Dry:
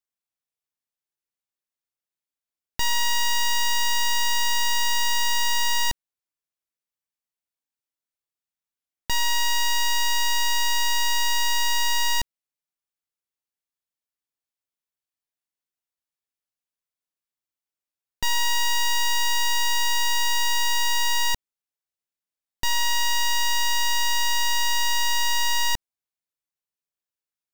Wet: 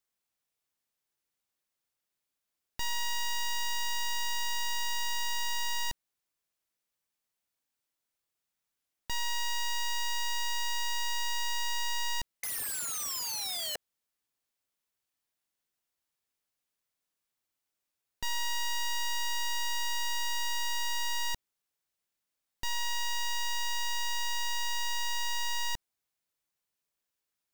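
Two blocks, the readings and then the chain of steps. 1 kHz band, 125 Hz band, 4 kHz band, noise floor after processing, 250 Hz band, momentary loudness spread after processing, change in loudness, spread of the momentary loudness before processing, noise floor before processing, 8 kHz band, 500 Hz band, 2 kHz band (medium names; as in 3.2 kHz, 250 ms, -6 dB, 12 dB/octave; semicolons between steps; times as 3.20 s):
-10.0 dB, -10.0 dB, -10.0 dB, under -85 dBFS, no reading, 4 LU, -10.0 dB, 4 LU, under -85 dBFS, -9.0 dB, -7.5 dB, -10.0 dB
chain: painted sound fall, 12.43–13.76 s, 580–2100 Hz -31 dBFS; integer overflow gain 34.5 dB; trim +5.5 dB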